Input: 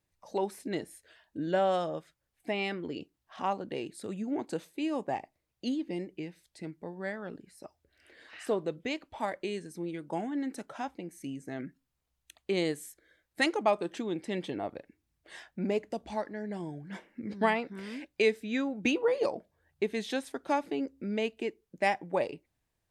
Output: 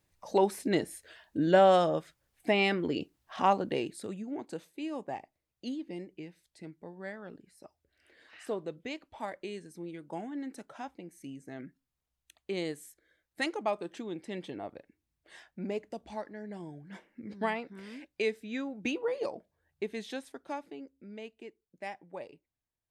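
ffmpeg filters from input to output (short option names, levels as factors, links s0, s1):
-af "volume=2,afade=t=out:st=3.62:d=0.62:silence=0.281838,afade=t=out:st=19.98:d=0.87:silence=0.398107"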